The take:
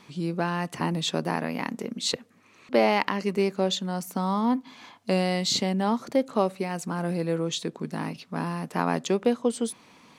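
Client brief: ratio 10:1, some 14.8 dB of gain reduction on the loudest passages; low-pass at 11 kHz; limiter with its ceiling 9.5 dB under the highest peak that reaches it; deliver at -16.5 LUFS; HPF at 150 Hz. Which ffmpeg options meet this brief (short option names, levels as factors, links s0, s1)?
-af "highpass=150,lowpass=11000,acompressor=threshold=0.0251:ratio=10,volume=13.3,alimiter=limit=0.562:level=0:latency=1"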